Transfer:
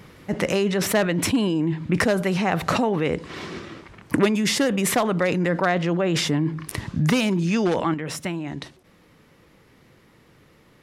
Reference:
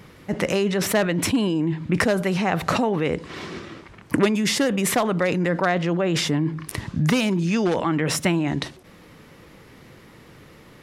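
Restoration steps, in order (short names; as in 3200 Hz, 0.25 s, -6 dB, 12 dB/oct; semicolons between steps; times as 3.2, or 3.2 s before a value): clip repair -9.5 dBFS; gain 0 dB, from 7.94 s +7.5 dB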